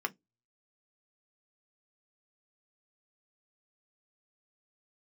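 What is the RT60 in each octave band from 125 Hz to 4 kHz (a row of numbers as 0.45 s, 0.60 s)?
0.55 s, 0.20 s, 0.20 s, 0.15 s, 0.10 s, 0.15 s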